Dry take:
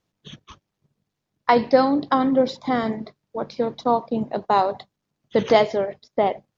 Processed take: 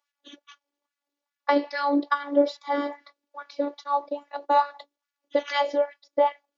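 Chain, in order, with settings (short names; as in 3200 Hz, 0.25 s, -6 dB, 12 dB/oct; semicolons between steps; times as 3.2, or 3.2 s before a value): robotiser 286 Hz; LFO high-pass sine 2.4 Hz 340–1700 Hz; gain -3 dB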